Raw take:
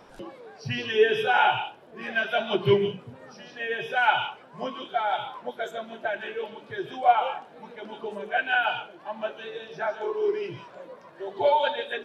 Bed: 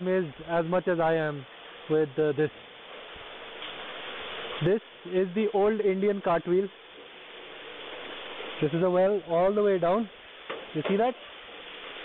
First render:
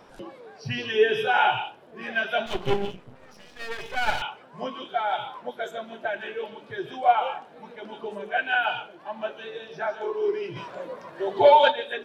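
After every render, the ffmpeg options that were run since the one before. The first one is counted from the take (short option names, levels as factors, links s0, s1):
-filter_complex "[0:a]asettb=1/sr,asplit=3[s0][s1][s2];[s0]atrim=end=2.464[s3];[s1]atrim=start=2.46:end=4.22,asetpts=PTS-STARTPTS,afade=t=in:d=0.004:c=qsin,afade=t=out:st=1.756:d=0.004:c=qsin,aeval=exprs='max(val(0),0)':c=same[s4];[s2]atrim=start=4.216[s5];[s3][s4]acrossfade=d=0.004:c1=hsin:c2=qsin[s6];[s6][s5]acrossfade=d=0.004:c1=qsin:c2=hsin,asplit=3[s7][s8][s9];[s7]afade=t=out:st=10.55:d=0.02[s10];[s8]acontrast=82,afade=t=in:st=10.55:d=0.02,afade=t=out:st=11.7:d=0.02[s11];[s9]afade=t=in:st=11.7:d=0.02[s12];[s10][s11][s12]amix=inputs=3:normalize=0"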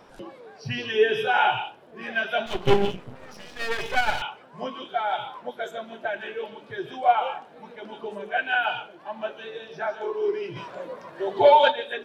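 -filter_complex "[0:a]asettb=1/sr,asplit=3[s0][s1][s2];[s0]atrim=end=2.674[s3];[s1]atrim=start=2.67:end=4.01,asetpts=PTS-STARTPTS,afade=t=in:d=0.004:c=qsin,afade=t=out:st=1.336:d=0.004:c=qsin,acontrast=55[s4];[s2]atrim=start=4.006[s5];[s3][s4]acrossfade=d=0.004:c1=hsin:c2=qsin[s6];[s6][s5]acrossfade=d=0.004:c1=qsin:c2=hsin"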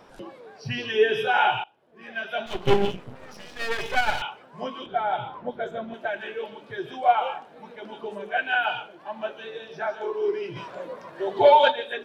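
-filter_complex "[0:a]asettb=1/sr,asplit=3[s0][s1][s2];[s0]atrim=end=4.864[s3];[s1]atrim=start=4.86:end=5.94,asetpts=PTS-STARTPTS,afade=t=in:d=0.004:c=qsin,afade=t=out:st=1.076:d=0.004:c=qsin,aemphasis=mode=reproduction:type=riaa[s4];[s2]atrim=start=5.936[s5];[s3][s4]acrossfade=d=0.004:c1=hsin:c2=qsin[s6];[s6][s5]acrossfade=d=0.004:c1=qsin:c2=hsin,asplit=2[s7][s8];[s7]atrim=end=1.64,asetpts=PTS-STARTPTS,afade=t=out:st=1.636:d=0.004:c=hsin:silence=0.0841395[s9];[s8]atrim=start=1.64,asetpts=PTS-STARTPTS,afade=t=in:d=1.18:silence=0.0841395[s10];[s9][s10]concat=n=2:v=0:a=1"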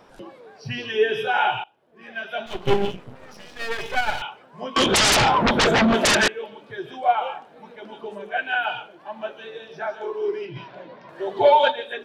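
-filter_complex "[0:a]asettb=1/sr,asplit=3[s0][s1][s2];[s0]atrim=end=4.764[s3];[s1]atrim=start=4.76:end=6.28,asetpts=PTS-STARTPTS,afade=t=in:d=0.004:c=qsin,afade=t=out:st=1.516:d=0.004:c=qsin,aeval=exprs='0.2*sin(PI/2*10*val(0)/0.2)':c=same[s4];[s2]atrim=start=6.276[s5];[s3][s4]acrossfade=d=0.004:c1=hsin:c2=qsin[s6];[s6][s5]acrossfade=d=0.004:c1=qsin:c2=hsin,asettb=1/sr,asplit=3[s7][s8][s9];[s7]atrim=end=10.454[s10];[s8]atrim=start=10.45:end=11.09,asetpts=PTS-STARTPTS,afade=t=in:d=0.004:c=qsin,afade=t=out:st=0.636:d=0.004:c=qsin,highpass=110,equalizer=f=130:t=q:w=4:g=7,equalizer=f=500:t=q:w=4:g=-9,equalizer=f=1200:t=q:w=4:g=-9,lowpass=f=4800:w=0.5412,lowpass=f=4800:w=1.3066[s11];[s9]atrim=start=11.086[s12];[s10][s11]acrossfade=d=0.004:c1=hsin:c2=qsin[s13];[s13][s12]acrossfade=d=0.004:c1=qsin:c2=hsin"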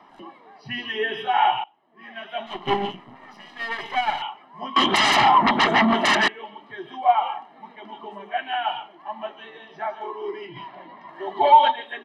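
-filter_complex "[0:a]acrossover=split=210 3600:gain=0.0891 1 0.158[s0][s1][s2];[s0][s1][s2]amix=inputs=3:normalize=0,aecho=1:1:1:0.82"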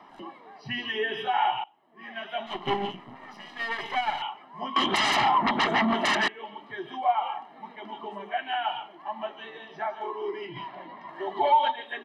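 -af "acompressor=threshold=0.0282:ratio=1.5"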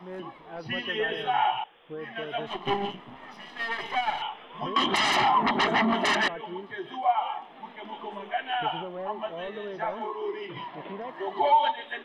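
-filter_complex "[1:a]volume=0.211[s0];[0:a][s0]amix=inputs=2:normalize=0"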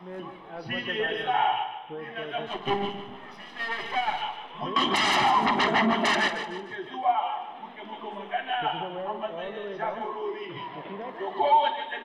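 -filter_complex "[0:a]asplit=2[s0][s1];[s1]adelay=50,volume=0.2[s2];[s0][s2]amix=inputs=2:normalize=0,asplit=2[s3][s4];[s4]aecho=0:1:151|302|453|604:0.316|0.13|0.0532|0.0218[s5];[s3][s5]amix=inputs=2:normalize=0"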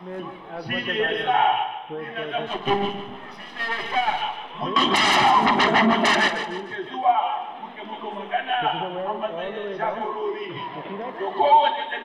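-af "volume=1.78"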